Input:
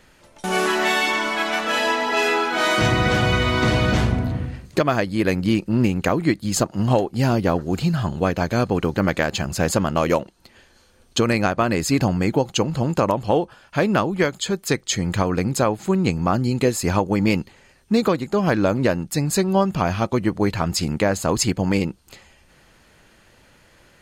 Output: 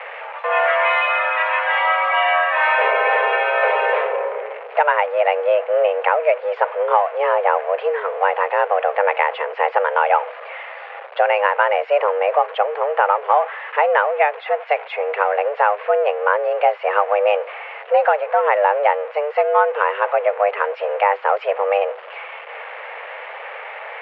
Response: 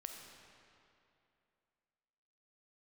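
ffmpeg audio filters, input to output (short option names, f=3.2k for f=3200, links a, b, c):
-af "aeval=exprs='val(0)+0.5*0.0473*sgn(val(0))':c=same,highpass=f=180:t=q:w=0.5412,highpass=f=180:t=q:w=1.307,lowpass=f=2.3k:t=q:w=0.5176,lowpass=f=2.3k:t=q:w=0.7071,lowpass=f=2.3k:t=q:w=1.932,afreqshift=300,volume=2.5dB"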